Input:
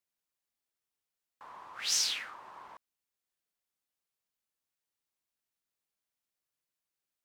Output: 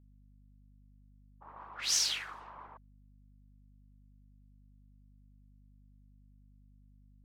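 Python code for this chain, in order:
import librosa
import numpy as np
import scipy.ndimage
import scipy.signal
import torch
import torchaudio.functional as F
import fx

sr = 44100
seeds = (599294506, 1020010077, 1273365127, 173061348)

y = fx.whisperise(x, sr, seeds[0])
y = fx.env_lowpass(y, sr, base_hz=330.0, full_db=-38.5)
y = fx.add_hum(y, sr, base_hz=50, snr_db=17)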